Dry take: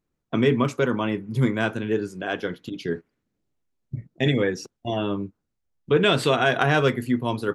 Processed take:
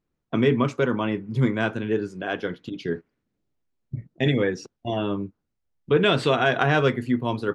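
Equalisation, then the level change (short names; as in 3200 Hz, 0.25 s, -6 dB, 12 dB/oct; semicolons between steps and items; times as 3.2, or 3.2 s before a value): air absorption 70 m; 0.0 dB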